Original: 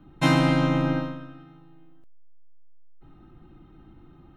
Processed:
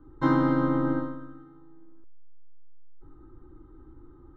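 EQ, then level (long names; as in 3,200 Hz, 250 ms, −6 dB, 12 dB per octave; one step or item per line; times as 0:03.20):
head-to-tape spacing loss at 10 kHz 39 dB
phaser with its sweep stopped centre 680 Hz, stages 6
+4.0 dB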